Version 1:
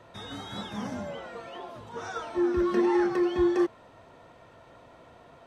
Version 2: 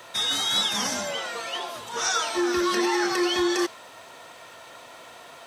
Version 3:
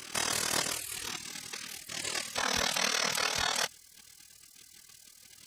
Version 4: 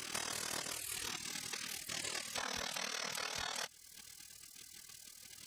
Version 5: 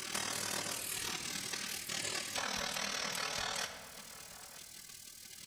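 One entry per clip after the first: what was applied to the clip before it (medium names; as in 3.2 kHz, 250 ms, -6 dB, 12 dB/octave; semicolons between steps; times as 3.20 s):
tilt EQ +4.5 dB/octave; peak limiter -24.5 dBFS, peak gain reduction 6 dB; dynamic bell 5.1 kHz, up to +5 dB, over -50 dBFS, Q 1; trim +8.5 dB
pre-echo 182 ms -15 dB; AM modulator 39 Hz, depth 85%; spectral gate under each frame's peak -20 dB weak; trim +7 dB
compression 6:1, threshold -38 dBFS, peak gain reduction 13 dB
echo from a far wall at 160 m, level -14 dB; reverberation RT60 1.7 s, pre-delay 5 ms, DRR 5 dB; trim +2 dB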